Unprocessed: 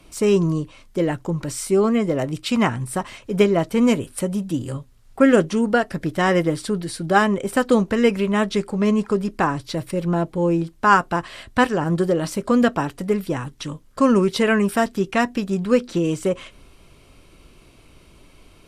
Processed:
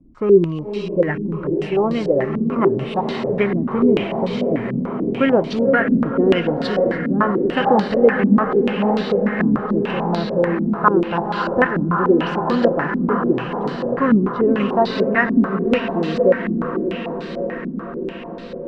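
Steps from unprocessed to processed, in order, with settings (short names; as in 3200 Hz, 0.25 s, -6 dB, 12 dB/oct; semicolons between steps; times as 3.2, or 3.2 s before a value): air absorption 59 m; diffused feedback echo 0.531 s, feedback 74%, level -5 dB; stepped low-pass 6.8 Hz 250–4200 Hz; gain -3 dB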